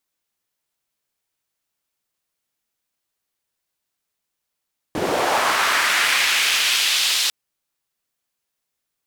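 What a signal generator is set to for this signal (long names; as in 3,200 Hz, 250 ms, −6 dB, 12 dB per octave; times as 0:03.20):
filter sweep on noise white, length 2.35 s bandpass, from 220 Hz, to 3,800 Hz, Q 1.5, linear, gain ramp −7.5 dB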